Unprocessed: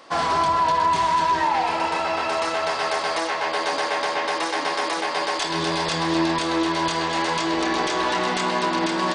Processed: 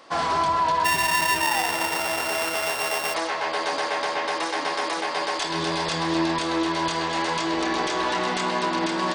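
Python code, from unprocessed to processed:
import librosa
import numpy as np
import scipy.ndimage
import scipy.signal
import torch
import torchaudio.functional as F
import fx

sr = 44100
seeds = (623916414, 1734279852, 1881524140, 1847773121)

y = fx.sample_sort(x, sr, block=16, at=(0.84, 3.13), fade=0.02)
y = y * 10.0 ** (-2.0 / 20.0)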